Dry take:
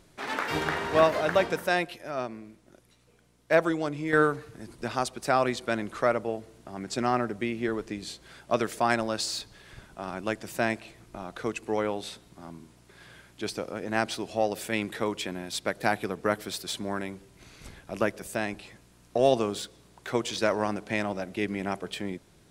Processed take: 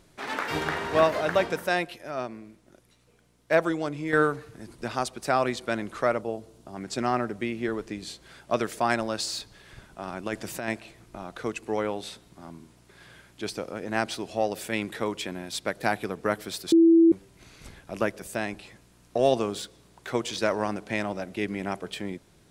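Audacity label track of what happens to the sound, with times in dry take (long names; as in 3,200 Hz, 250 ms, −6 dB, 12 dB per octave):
6.210000	6.740000	parametric band 1,900 Hz −8.5 dB 0.94 octaves
10.260000	10.680000	compressor whose output falls as the input rises −31 dBFS
16.720000	17.120000	beep over 331 Hz −13 dBFS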